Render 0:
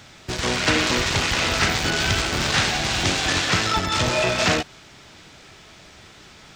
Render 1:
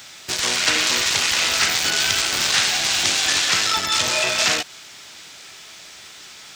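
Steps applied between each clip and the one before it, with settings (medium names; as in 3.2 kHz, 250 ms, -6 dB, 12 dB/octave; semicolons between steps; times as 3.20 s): tilt EQ +3.5 dB/octave; compression 1.5:1, threshold -22 dBFS, peak gain reduction 4.5 dB; trim +1 dB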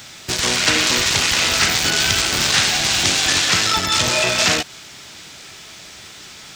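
bass shelf 320 Hz +10 dB; trim +2 dB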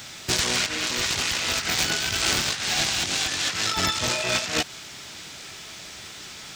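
compressor with a negative ratio -20 dBFS, ratio -0.5; trim -4.5 dB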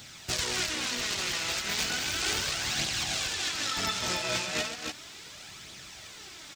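loudspeakers at several distances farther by 45 m -11 dB, 100 m -5 dB; flange 0.35 Hz, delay 0.2 ms, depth 6 ms, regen +42%; trim -3.5 dB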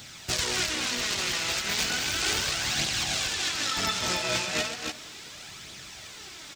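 reverberation RT60 1.1 s, pre-delay 150 ms, DRR 17.5 dB; trim +2.5 dB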